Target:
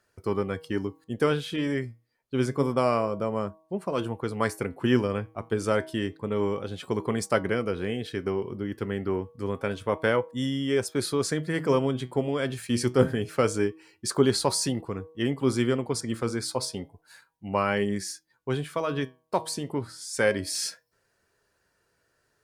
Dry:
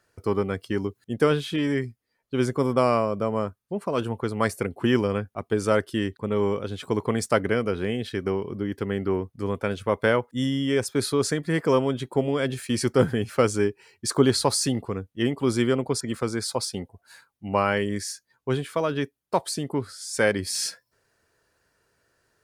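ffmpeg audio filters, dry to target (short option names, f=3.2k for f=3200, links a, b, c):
-af "flanger=delay=4.8:depth=4.2:regen=81:speed=0.28:shape=triangular,bandreject=f=159.3:t=h:w=4,bandreject=f=318.6:t=h:w=4,bandreject=f=477.9:t=h:w=4,bandreject=f=637.2:t=h:w=4,bandreject=f=796.5:t=h:w=4,bandreject=f=955.8:t=h:w=4,bandreject=f=1.1151k:t=h:w=4,volume=2dB"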